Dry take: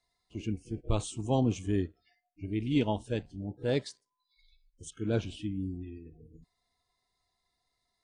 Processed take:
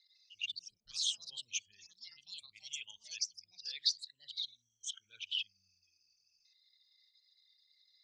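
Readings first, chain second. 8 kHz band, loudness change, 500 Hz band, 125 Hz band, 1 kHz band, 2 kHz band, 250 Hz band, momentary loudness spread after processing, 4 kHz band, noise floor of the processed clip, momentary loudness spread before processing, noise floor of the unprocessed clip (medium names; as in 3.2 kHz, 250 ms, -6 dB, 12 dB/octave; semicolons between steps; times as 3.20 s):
+5.5 dB, -6.5 dB, under -40 dB, under -40 dB, under -35 dB, -2.0 dB, under -40 dB, 15 LU, +9.5 dB, -80 dBFS, 17 LU, -82 dBFS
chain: resonances exaggerated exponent 2; inverse Chebyshev high-pass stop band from 760 Hz, stop band 60 dB; ever faster or slower copies 151 ms, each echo +4 st, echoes 3; steep low-pass 5.9 kHz 36 dB/octave; trim +14.5 dB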